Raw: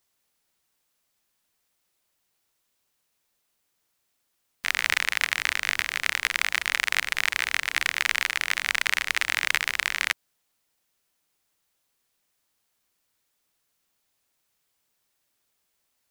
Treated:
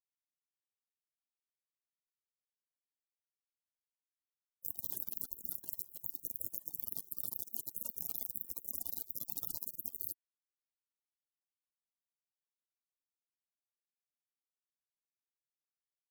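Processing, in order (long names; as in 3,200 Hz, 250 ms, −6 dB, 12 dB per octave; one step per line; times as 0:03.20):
gate on every frequency bin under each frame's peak −30 dB weak
output level in coarse steps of 18 dB
level +13.5 dB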